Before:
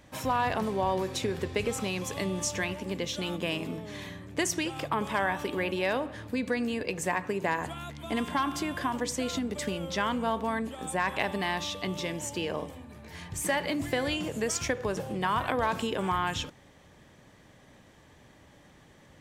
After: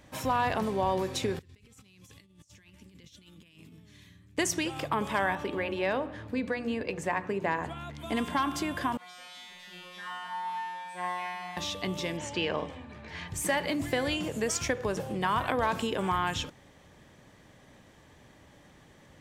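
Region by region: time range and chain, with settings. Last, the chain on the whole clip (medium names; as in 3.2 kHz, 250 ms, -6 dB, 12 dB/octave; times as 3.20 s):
1.39–4.38 s: amplifier tone stack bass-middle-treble 6-0-2 + compressor with a negative ratio -54 dBFS, ratio -0.5
5.35–7.94 s: low-pass 2.8 kHz 6 dB/octave + hum notches 60/120/180/240/300/360/420/480 Hz
8.97–11.57 s: one-bit delta coder 64 kbps, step -31.5 dBFS + high-order bell 1.7 kHz +12.5 dB 2.8 oct + feedback comb 180 Hz, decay 1.7 s, mix 100%
12.17–13.28 s: low-pass 5.1 kHz + peaking EQ 2.1 kHz +5.5 dB 2.6 oct
whole clip: none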